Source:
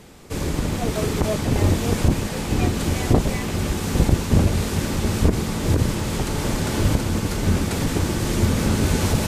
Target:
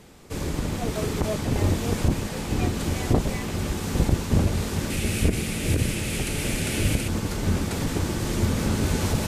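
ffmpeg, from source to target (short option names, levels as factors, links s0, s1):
-filter_complex "[0:a]asettb=1/sr,asplit=3[s0][s1][s2];[s0]atrim=end=4.904[s3];[s1]atrim=start=4.9:end=7.08,asetpts=PTS-STARTPTS,afade=t=in:d=0.004:c=qsin,afade=t=out:st=2.176:d=0.004:c=qsin,equalizer=f=1000:t=o:w=0.67:g=-9,equalizer=f=2500:t=o:w=0.67:g=10,equalizer=f=10000:t=o:w=0.67:g=9[s4];[s2]atrim=start=7.076[s5];[s3][s4]acrossfade=d=0.004:c1=hsin:c2=qsin[s6];[s6][s5]acrossfade=d=0.004:c1=qsin:c2=hsin,volume=0.631"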